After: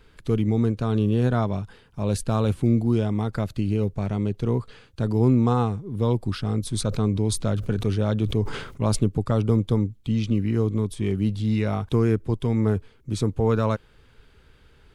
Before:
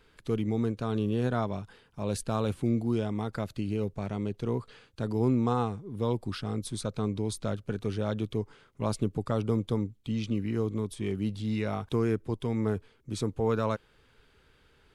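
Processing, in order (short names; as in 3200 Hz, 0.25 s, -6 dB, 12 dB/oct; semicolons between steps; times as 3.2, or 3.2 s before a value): low shelf 160 Hz +8 dB; 6.61–8.99 sustainer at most 66 dB/s; gain +4 dB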